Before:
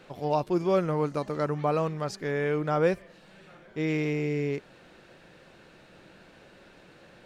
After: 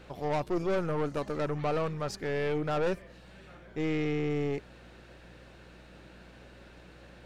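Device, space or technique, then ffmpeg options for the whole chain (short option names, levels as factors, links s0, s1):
valve amplifier with mains hum: -filter_complex "[0:a]aeval=exprs='(tanh(22.4*val(0)+0.5)-tanh(0.5))/22.4':c=same,aeval=exprs='val(0)+0.00158*(sin(2*PI*60*n/s)+sin(2*PI*2*60*n/s)/2+sin(2*PI*3*60*n/s)/3+sin(2*PI*4*60*n/s)/4+sin(2*PI*5*60*n/s)/5)':c=same,asettb=1/sr,asplit=3[s0][s1][s2];[s0]atrim=end=3.884[s3];[s1]atrim=start=3.88:end=4.3,asetpts=PTS-STARTPTS,afade=t=in:d=0.004:c=qsin,afade=t=out:st=0.416:d=0.004:c=qsin,lowpass=6400[s4];[s2]atrim=start=4.296[s5];[s3][s4]acrossfade=d=0.004:c1=hsin:c2=qsin[s6];[s6][s5]acrossfade=d=0.004:c1=qsin:c2=hsin,volume=1.19"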